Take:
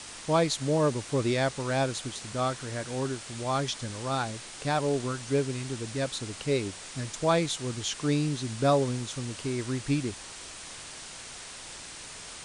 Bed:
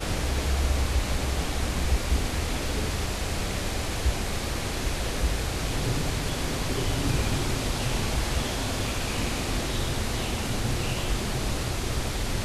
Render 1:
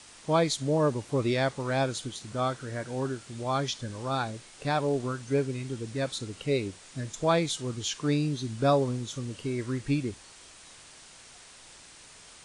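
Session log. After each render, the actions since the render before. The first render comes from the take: noise print and reduce 8 dB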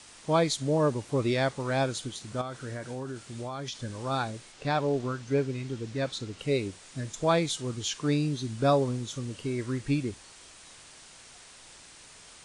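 2.41–3.83 s: compression 12:1, threshold -32 dBFS; 4.52–6.39 s: low-pass 6.5 kHz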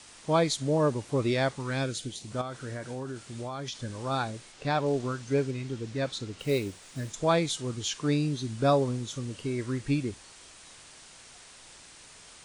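1.55–2.30 s: peaking EQ 520 Hz -> 1.6 kHz -11.5 dB; 4.86–5.51 s: treble shelf 6.7 kHz +7 dB; 6.40–7.14 s: block-companded coder 5-bit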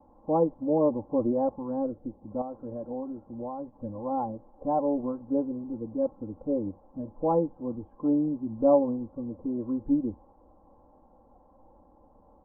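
Chebyshev low-pass 970 Hz, order 5; comb 3.7 ms, depth 96%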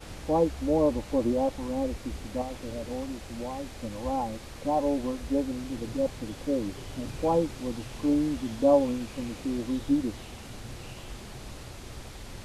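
add bed -14 dB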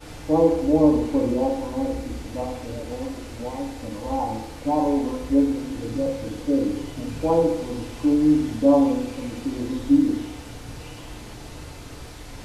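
FDN reverb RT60 0.83 s, low-frequency decay 0.9×, high-frequency decay 0.6×, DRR -1.5 dB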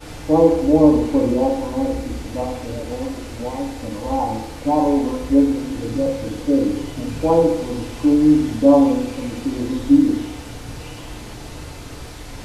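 trim +4.5 dB

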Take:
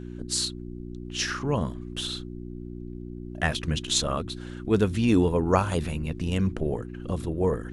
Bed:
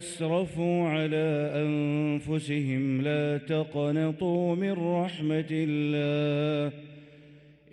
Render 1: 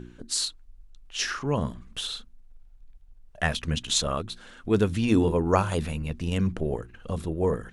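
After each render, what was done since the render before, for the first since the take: de-hum 60 Hz, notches 6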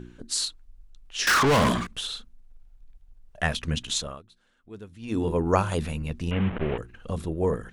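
1.27–1.87 s: overdrive pedal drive 37 dB, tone 7.9 kHz, clips at -13.5 dBFS; 3.81–5.40 s: dip -20 dB, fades 0.41 s; 6.31–6.78 s: one-bit delta coder 16 kbps, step -27.5 dBFS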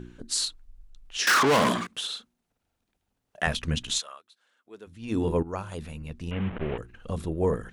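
1.17–3.47 s: high-pass 200 Hz; 3.98–4.86 s: high-pass 1.3 kHz -> 310 Hz; 5.43–7.42 s: fade in, from -14 dB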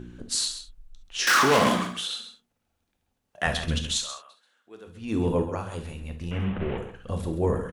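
delay 133 ms -11 dB; gated-style reverb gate 90 ms flat, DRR 5.5 dB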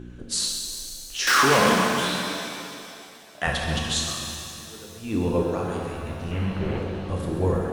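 pitch-shifted reverb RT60 2.6 s, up +7 st, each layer -8 dB, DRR 1.5 dB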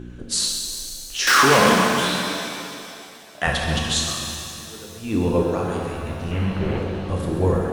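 trim +3.5 dB

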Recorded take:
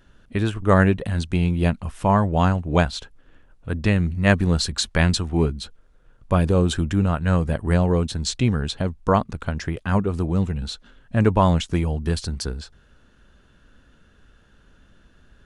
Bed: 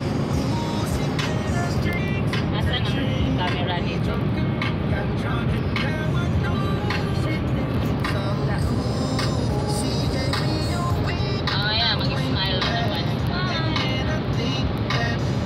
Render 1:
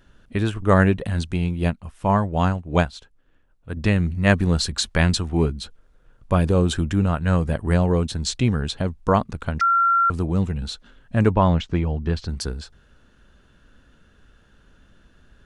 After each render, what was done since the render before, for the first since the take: 1.33–3.77 s: upward expansion, over -33 dBFS; 9.61–10.10 s: bleep 1.37 kHz -14.5 dBFS; 11.30–12.29 s: distance through air 160 m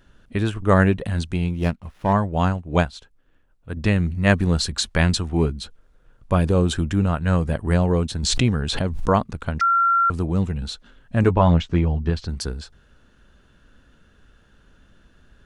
1.54–2.13 s: sliding maximum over 5 samples; 8.23–9.09 s: swell ahead of each attack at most 34 dB/s; 11.22–12.10 s: doubling 12 ms -7 dB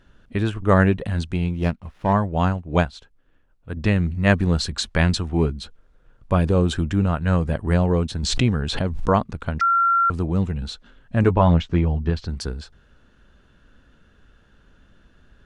treble shelf 8.3 kHz -10 dB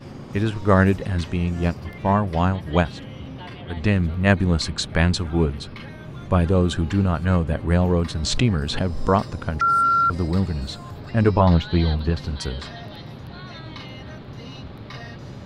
add bed -14 dB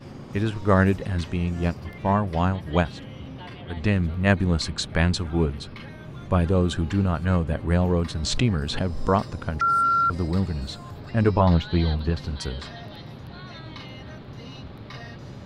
trim -2.5 dB

